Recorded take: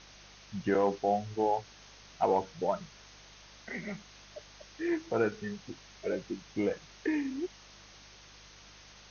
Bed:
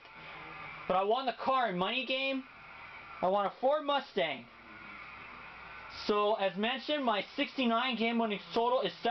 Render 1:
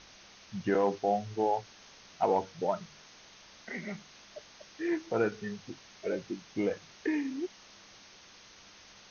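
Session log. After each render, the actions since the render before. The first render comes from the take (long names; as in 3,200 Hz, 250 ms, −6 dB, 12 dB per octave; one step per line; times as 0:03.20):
hum removal 50 Hz, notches 3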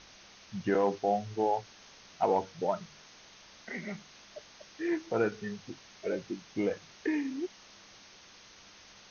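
no processing that can be heard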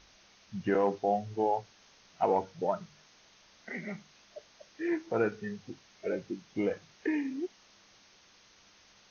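noise reduction from a noise print 6 dB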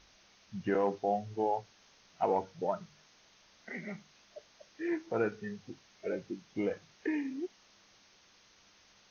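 level −2.5 dB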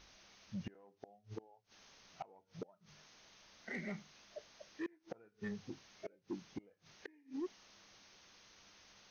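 gate with flip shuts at −28 dBFS, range −33 dB
soft clipping −34.5 dBFS, distortion −14 dB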